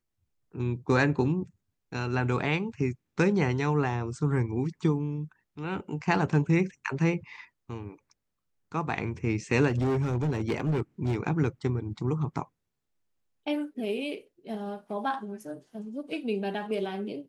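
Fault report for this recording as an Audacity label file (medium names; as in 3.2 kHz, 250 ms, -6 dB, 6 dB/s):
9.680000	11.160000	clipped -23 dBFS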